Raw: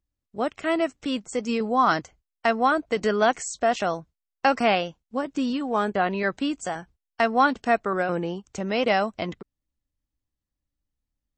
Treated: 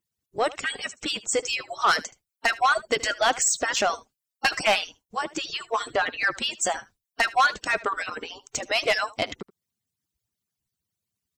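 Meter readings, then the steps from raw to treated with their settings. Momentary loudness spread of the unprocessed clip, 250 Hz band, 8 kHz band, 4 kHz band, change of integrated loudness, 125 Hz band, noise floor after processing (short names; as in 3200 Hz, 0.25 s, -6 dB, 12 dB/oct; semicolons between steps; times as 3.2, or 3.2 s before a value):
10 LU, -13.5 dB, +11.5 dB, +7.0 dB, 0.0 dB, -11.5 dB, under -85 dBFS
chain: median-filter separation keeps percussive; high shelf 2900 Hz +10.5 dB; soft clip -17.5 dBFS, distortion -13 dB; echo 76 ms -19.5 dB; gain +4 dB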